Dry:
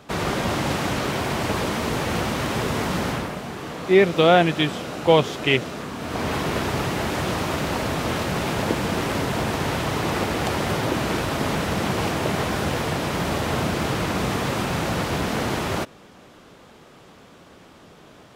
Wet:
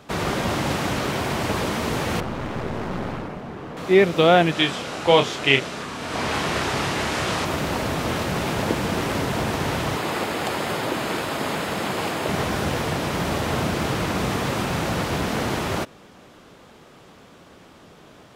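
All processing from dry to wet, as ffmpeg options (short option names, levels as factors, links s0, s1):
-filter_complex "[0:a]asettb=1/sr,asplit=3[s0][s1][s2];[s0]atrim=end=2.204[s3];[s1]atrim=start=2.2:end=3.77,asetpts=PTS-STARTPTS,afade=t=in:d=0.004:c=qsin,afade=t=out:st=1.566:d=0.004:c=qsin,lowpass=f=1200:p=1,aeval=exprs='clip(val(0),-1,0.0224)':c=same[s4];[s2]atrim=start=3.766[s5];[s3][s4]acrossfade=d=0.004:c1=hsin:c2=qsin[s6];[s6][s5]acrossfade=d=0.004:c1=qsin:c2=hsin,asettb=1/sr,asplit=3[s7][s8][s9];[s7]atrim=end=4.524[s10];[s8]atrim=start=4.52:end=7.45,asetpts=PTS-STARTPTS,afade=t=in:d=0.004:c=qsin,afade=t=out:st=2.926:d=0.004:c=qsin,lowpass=9800,tiltshelf=f=710:g=-3.5,asplit=2[s11][s12];[s12]adelay=29,volume=0.447[s13];[s11][s13]amix=inputs=2:normalize=0,atrim=end_sample=129213[s14];[s9]atrim=start=7.446[s15];[s10][s14]acrossfade=d=0.004:c1=hsin:c2=qsin[s16];[s16][s15]acrossfade=d=0.004:c1=qsin:c2=hsin,asettb=1/sr,asplit=3[s17][s18][s19];[s17]atrim=end=9.964[s20];[s18]atrim=start=9.96:end=12.29,asetpts=PTS-STARTPTS,afade=t=in:d=0.004:c=qsin,afade=t=out:st=2.326:d=0.004:c=qsin,highpass=f=280:p=1,bandreject=f=5800:w=8.8[s21];[s19]atrim=start=12.286[s22];[s20][s21]acrossfade=d=0.004:c1=hsin:c2=qsin[s23];[s23][s22]acrossfade=d=0.004:c1=qsin:c2=hsin"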